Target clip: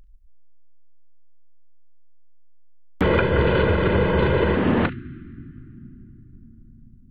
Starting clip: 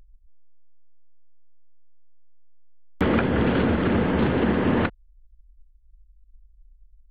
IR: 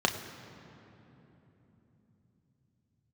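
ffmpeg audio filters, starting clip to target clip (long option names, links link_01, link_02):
-filter_complex "[0:a]asettb=1/sr,asplit=3[link_01][link_02][link_03];[link_01]atrim=end=3.044[link_04];[link_02]atrim=start=3.04:end=4.56,asetpts=PTS-STARTPTS,afade=type=in:duration=0.004:curve=qsin,afade=type=out:start_time=1.516:duration=0.004:curve=qsin,aecho=1:1:2:0.77,atrim=end_sample=67032[link_05];[link_03]atrim=start=4.556[link_06];[link_04][link_05]acrossfade=duration=0.004:curve1=hsin:curve2=qsin[link_07];[link_07][link_06]acrossfade=duration=0.004:curve1=qsin:curve2=hsin,asplit=2[link_08][link_09];[link_09]asuperstop=centerf=670:order=12:qfactor=0.74[link_10];[1:a]atrim=start_sample=2205,adelay=38[link_11];[link_10][link_11]afir=irnorm=-1:irlink=0,volume=-22dB[link_12];[link_08][link_12]amix=inputs=2:normalize=0,volume=1.5dB"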